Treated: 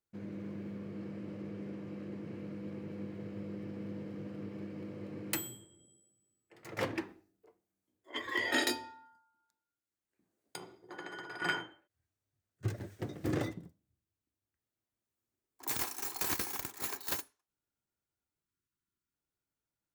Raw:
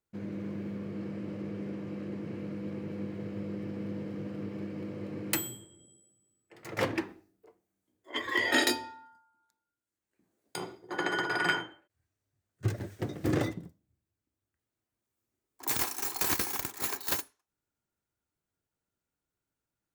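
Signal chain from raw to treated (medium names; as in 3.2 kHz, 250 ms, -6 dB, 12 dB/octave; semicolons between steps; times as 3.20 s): 10.56–11.42 s: compression 2:1, threshold -45 dBFS, peak gain reduction 10 dB; 18.44–19.14 s: spectral selection erased 410–940 Hz; trim -5 dB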